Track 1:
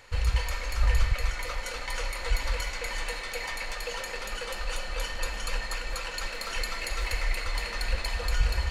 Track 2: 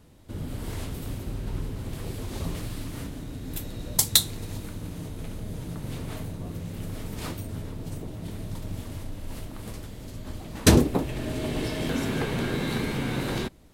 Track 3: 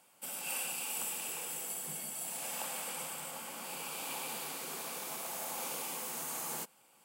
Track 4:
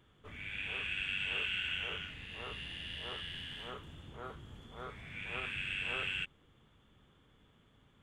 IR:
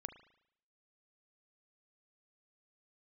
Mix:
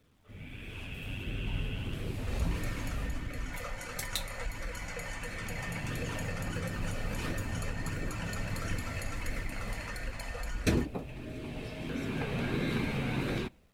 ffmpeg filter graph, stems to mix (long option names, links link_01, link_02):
-filter_complex "[0:a]equalizer=frequency=630:width_type=o:width=0.67:gain=6,equalizer=frequency=1600:width_type=o:width=0.67:gain=3,equalizer=frequency=4000:width_type=o:width=0.67:gain=-10,adelay=2150,volume=0.5dB[link_01];[1:a]equalizer=frequency=2500:width=5.7:gain=9,dynaudnorm=framelen=740:gausssize=3:maxgain=11.5dB,acrusher=bits=8:mix=0:aa=0.000001,volume=-11.5dB,asplit=2[link_02][link_03];[link_03]volume=-12.5dB[link_04];[3:a]volume=-8dB[link_05];[link_01][link_05]amix=inputs=2:normalize=0,highshelf=frequency=3200:gain=12,acompressor=threshold=-33dB:ratio=3,volume=0dB[link_06];[4:a]atrim=start_sample=2205[link_07];[link_04][link_07]afir=irnorm=-1:irlink=0[link_08];[link_02][link_06][link_08]amix=inputs=3:normalize=0,highshelf=frequency=4500:gain=-7.5,flanger=delay=0.5:depth=1.1:regen=-56:speed=1.5:shape=sinusoidal"